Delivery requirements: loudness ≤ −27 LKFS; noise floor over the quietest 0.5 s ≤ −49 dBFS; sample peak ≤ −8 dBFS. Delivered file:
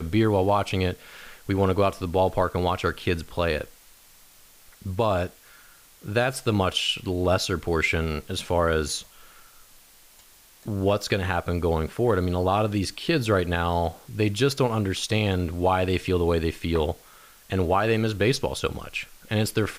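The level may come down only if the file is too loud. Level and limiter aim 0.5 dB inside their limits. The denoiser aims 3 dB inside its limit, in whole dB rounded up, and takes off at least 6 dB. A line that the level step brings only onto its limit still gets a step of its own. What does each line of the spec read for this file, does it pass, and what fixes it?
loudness −25.0 LKFS: out of spec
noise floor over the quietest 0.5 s −53 dBFS: in spec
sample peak −10.5 dBFS: in spec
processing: level −2.5 dB

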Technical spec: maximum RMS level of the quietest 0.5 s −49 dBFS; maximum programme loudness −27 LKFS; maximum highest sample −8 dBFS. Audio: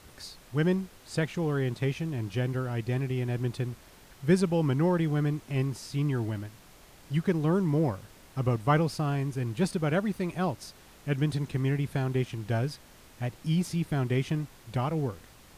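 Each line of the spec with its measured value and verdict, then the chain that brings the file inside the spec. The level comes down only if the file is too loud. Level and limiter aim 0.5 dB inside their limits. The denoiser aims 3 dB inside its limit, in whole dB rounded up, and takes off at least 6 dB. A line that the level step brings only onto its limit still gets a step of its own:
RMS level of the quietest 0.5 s −53 dBFS: in spec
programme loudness −29.5 LKFS: in spec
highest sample −12.0 dBFS: in spec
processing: no processing needed

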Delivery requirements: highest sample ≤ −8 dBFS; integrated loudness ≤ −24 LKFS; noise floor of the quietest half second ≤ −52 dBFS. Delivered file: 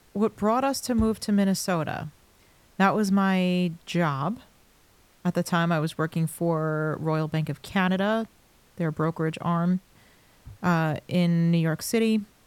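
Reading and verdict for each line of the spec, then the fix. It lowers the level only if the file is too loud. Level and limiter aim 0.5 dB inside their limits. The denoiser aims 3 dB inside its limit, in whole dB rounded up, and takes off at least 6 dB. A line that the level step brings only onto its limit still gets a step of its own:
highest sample −9.0 dBFS: in spec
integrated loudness −25.5 LKFS: in spec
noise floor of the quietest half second −59 dBFS: in spec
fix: no processing needed

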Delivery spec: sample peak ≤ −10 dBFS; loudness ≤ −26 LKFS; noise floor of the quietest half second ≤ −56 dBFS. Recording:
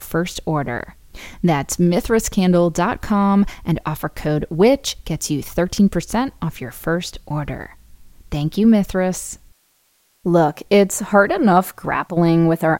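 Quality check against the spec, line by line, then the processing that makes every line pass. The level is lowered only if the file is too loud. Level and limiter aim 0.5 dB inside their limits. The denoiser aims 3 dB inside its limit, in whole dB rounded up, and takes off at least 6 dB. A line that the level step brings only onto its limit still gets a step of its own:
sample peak −2.0 dBFS: out of spec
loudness −18.5 LKFS: out of spec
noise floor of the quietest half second −61 dBFS: in spec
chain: level −8 dB
brickwall limiter −10.5 dBFS

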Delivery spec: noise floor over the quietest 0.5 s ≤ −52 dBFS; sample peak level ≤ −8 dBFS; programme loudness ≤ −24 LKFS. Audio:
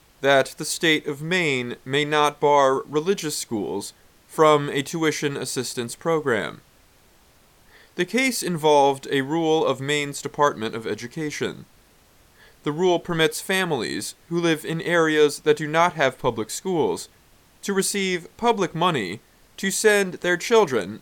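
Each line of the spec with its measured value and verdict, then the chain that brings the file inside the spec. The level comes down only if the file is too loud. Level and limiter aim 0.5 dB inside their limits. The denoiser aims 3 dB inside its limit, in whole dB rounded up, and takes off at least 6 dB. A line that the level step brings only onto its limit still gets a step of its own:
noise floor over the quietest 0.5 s −56 dBFS: in spec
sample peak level −4.0 dBFS: out of spec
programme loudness −22.0 LKFS: out of spec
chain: level −2.5 dB
brickwall limiter −8.5 dBFS

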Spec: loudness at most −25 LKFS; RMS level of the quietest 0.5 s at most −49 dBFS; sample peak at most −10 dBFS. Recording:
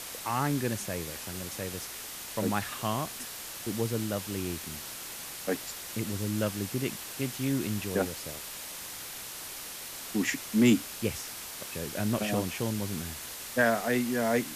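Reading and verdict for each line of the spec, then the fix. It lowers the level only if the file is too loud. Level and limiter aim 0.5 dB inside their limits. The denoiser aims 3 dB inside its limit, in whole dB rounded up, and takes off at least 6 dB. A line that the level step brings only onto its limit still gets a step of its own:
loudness −32.0 LKFS: in spec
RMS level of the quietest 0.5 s −41 dBFS: out of spec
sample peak −12.0 dBFS: in spec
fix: broadband denoise 11 dB, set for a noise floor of −41 dBFS

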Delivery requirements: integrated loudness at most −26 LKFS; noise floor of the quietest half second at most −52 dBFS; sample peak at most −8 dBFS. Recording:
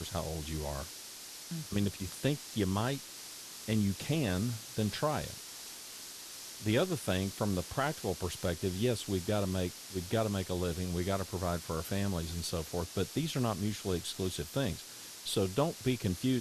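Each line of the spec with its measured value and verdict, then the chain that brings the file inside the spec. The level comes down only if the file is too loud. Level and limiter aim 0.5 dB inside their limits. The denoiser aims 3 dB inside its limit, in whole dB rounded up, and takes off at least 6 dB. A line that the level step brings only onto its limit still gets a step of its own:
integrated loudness −35.0 LKFS: in spec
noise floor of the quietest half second −48 dBFS: out of spec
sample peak −17.5 dBFS: in spec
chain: broadband denoise 7 dB, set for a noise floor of −48 dBFS

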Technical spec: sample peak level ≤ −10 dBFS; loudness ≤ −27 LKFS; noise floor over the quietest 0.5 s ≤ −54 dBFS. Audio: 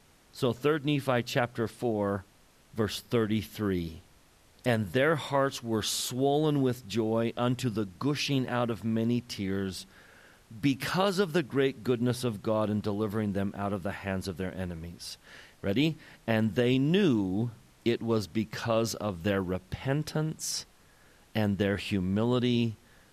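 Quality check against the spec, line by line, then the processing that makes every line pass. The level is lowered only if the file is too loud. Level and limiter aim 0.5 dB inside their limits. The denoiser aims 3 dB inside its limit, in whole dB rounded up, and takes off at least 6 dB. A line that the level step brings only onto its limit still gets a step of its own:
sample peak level −12.0 dBFS: in spec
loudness −30.0 LKFS: in spec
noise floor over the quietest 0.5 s −60 dBFS: in spec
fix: no processing needed

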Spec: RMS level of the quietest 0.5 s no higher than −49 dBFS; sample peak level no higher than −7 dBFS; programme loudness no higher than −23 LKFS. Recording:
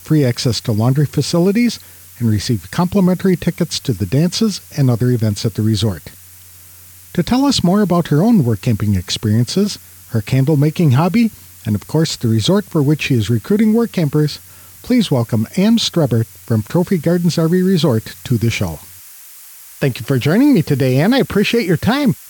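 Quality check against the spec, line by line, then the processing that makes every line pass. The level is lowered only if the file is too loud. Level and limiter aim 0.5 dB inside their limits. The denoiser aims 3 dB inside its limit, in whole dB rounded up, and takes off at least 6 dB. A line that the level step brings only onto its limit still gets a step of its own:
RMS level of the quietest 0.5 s −40 dBFS: out of spec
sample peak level −4.5 dBFS: out of spec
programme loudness −15.5 LKFS: out of spec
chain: broadband denoise 6 dB, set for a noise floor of −40 dBFS
level −8 dB

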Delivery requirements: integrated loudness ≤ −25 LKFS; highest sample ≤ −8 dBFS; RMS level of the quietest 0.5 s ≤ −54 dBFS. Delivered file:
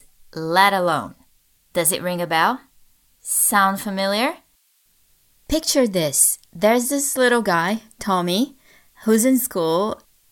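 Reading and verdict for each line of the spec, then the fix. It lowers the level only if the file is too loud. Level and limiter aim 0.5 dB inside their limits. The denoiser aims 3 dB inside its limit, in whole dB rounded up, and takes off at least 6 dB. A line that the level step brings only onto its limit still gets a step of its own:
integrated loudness −19.0 LKFS: out of spec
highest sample −2.0 dBFS: out of spec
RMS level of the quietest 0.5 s −61 dBFS: in spec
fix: level −6.5 dB

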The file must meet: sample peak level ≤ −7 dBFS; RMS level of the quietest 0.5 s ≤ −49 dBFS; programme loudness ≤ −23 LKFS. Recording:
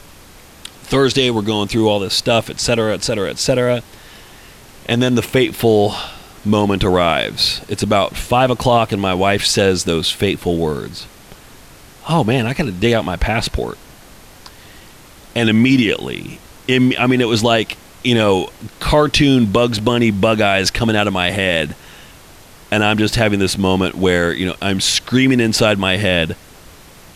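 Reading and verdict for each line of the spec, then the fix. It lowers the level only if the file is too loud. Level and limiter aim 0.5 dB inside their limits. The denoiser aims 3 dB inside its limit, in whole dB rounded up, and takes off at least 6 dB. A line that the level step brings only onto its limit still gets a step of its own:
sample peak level −2.5 dBFS: out of spec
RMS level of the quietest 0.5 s −41 dBFS: out of spec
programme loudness −15.5 LKFS: out of spec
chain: broadband denoise 6 dB, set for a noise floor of −41 dBFS
level −8 dB

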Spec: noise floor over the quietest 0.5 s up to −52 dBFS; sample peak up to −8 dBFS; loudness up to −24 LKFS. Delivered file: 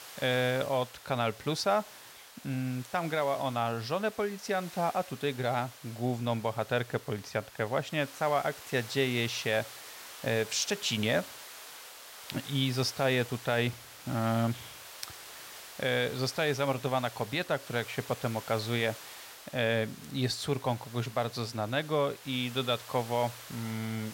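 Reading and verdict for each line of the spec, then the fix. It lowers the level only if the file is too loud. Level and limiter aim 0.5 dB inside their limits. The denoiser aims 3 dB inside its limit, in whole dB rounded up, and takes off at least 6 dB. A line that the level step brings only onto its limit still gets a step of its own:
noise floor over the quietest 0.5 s −51 dBFS: out of spec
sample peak −16.5 dBFS: in spec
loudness −32.0 LKFS: in spec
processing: broadband denoise 6 dB, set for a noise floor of −51 dBFS

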